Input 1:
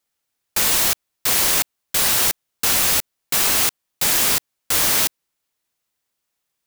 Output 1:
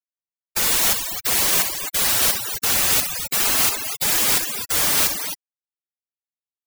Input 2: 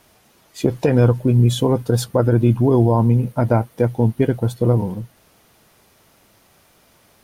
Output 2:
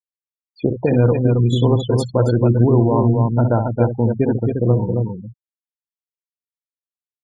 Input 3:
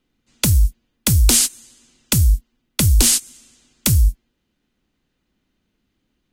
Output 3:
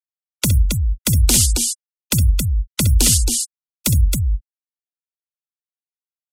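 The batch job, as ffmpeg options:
-af "aecho=1:1:64.14|271.1:0.398|0.631,afftfilt=real='re*gte(hypot(re,im),0.0794)':imag='im*gte(hypot(re,im),0.0794)':win_size=1024:overlap=0.75,volume=-1dB"

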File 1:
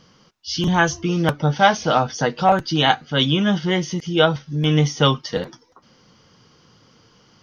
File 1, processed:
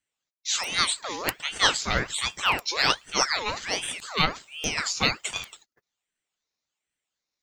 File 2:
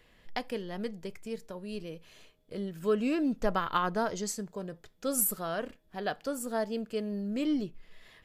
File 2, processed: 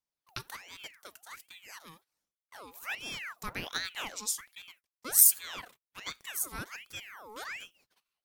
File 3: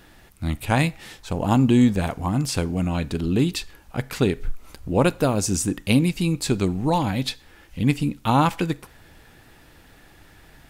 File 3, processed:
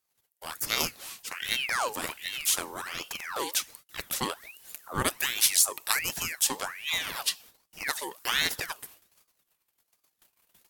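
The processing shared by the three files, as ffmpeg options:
-af "agate=range=-28dB:threshold=-46dB:ratio=16:detection=peak,aemphasis=mode=production:type=riaa,aeval=exprs='val(0)*sin(2*PI*1800*n/s+1800*0.65/1.3*sin(2*PI*1.3*n/s))':c=same,volume=-4.5dB"

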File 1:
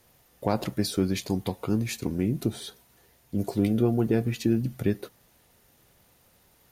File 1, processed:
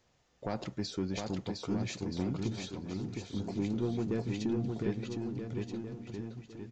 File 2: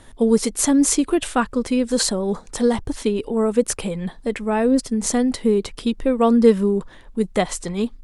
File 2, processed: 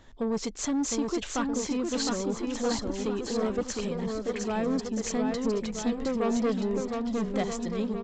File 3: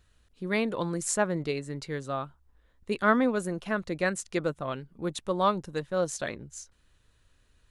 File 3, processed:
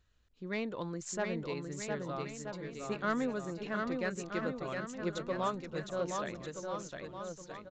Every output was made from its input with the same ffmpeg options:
-af "aresample=16000,asoftclip=type=tanh:threshold=-15.5dB,aresample=44100,aecho=1:1:710|1278|1732|2096|2387:0.631|0.398|0.251|0.158|0.1,volume=-8dB"

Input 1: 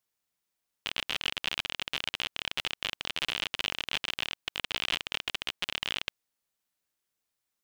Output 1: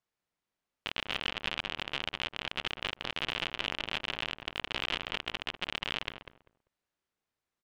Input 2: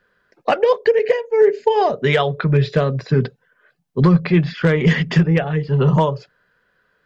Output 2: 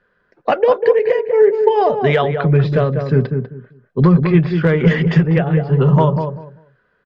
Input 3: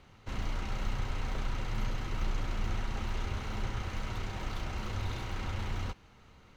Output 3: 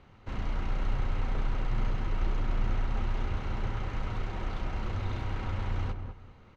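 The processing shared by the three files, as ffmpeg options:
-filter_complex "[0:a]aemphasis=mode=reproduction:type=75fm,asplit=2[a][b];[b]adelay=196,lowpass=f=1.1k:p=1,volume=-5.5dB,asplit=2[c][d];[d]adelay=196,lowpass=f=1.1k:p=1,volume=0.22,asplit=2[e][f];[f]adelay=196,lowpass=f=1.1k:p=1,volume=0.22[g];[c][e][g]amix=inputs=3:normalize=0[h];[a][h]amix=inputs=2:normalize=0,volume=1dB"

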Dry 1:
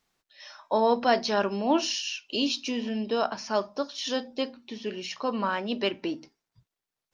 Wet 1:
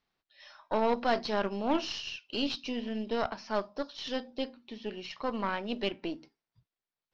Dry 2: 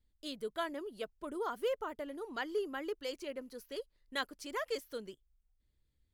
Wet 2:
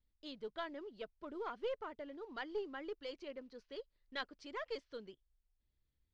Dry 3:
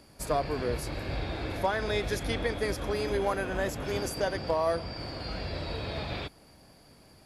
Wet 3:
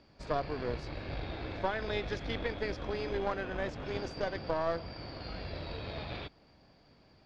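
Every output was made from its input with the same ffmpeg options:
-af "acrusher=bits=7:mode=log:mix=0:aa=0.000001,aeval=exprs='0.316*(cos(1*acos(clip(val(0)/0.316,-1,1)))-cos(1*PI/2))+0.0316*(cos(6*acos(clip(val(0)/0.316,-1,1)))-cos(6*PI/2))':c=same,lowpass=f=4.9k:w=0.5412,lowpass=f=4.9k:w=1.3066,volume=-5.5dB"

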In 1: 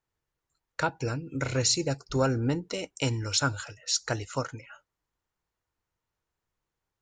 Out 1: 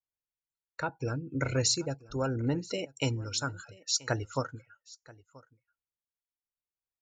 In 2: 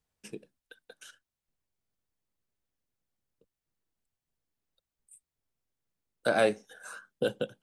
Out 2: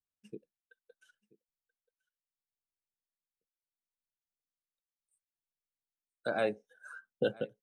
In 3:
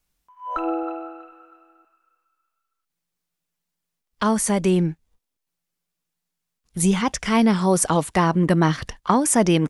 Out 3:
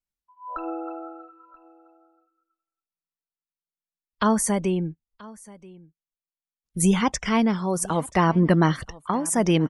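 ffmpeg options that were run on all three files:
-af "afftdn=nr=19:nf=-38,tremolo=f=0.71:d=0.55,aecho=1:1:981:0.0794"

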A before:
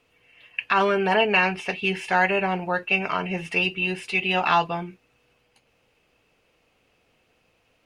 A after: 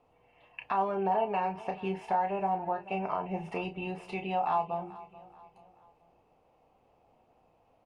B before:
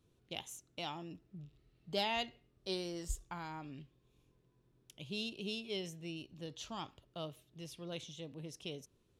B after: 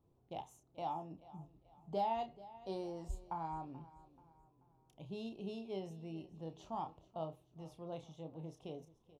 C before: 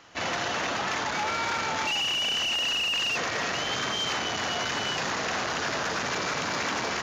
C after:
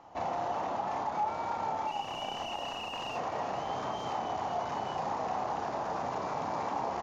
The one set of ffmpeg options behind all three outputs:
-filter_complex "[0:a]firequalizer=gain_entry='entry(470,0);entry(800,10);entry(1500,-11);entry(3300,-14)':delay=0.05:min_phase=1,acompressor=threshold=-33dB:ratio=2,asplit=2[a][b];[b]adelay=31,volume=-8dB[c];[a][c]amix=inputs=2:normalize=0,asplit=2[d][e];[e]aecho=0:1:433|866|1299:0.119|0.0487|0.02[f];[d][f]amix=inputs=2:normalize=0,volume=-2dB"

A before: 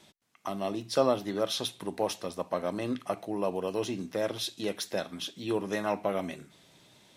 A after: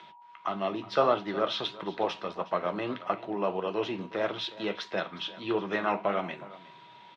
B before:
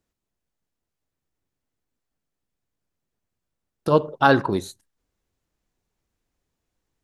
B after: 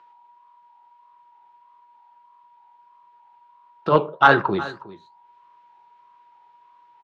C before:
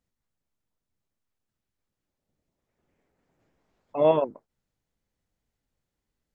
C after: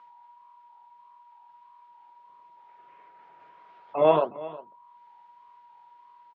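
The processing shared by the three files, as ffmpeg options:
-filter_complex "[0:a]aemphasis=mode=production:type=50fm,acrossover=split=390[a][b];[b]acompressor=mode=upward:threshold=-49dB:ratio=2.5[c];[a][c]amix=inputs=2:normalize=0,aeval=exprs='val(0)+0.002*sin(2*PI*960*n/s)':c=same,highpass=160,equalizer=f=260:t=q:w=4:g=-9,equalizer=f=520:t=q:w=4:g=-4,equalizer=f=1.3k:t=q:w=4:g=6,lowpass=f=3.2k:w=0.5412,lowpass=f=3.2k:w=1.3066,flanger=delay=5.8:depth=9.7:regen=-61:speed=1.6:shape=sinusoidal,asplit=2[d][e];[e]aecho=0:1:363:0.126[f];[d][f]amix=inputs=2:normalize=0,acontrast=43,volume=1.5dB"

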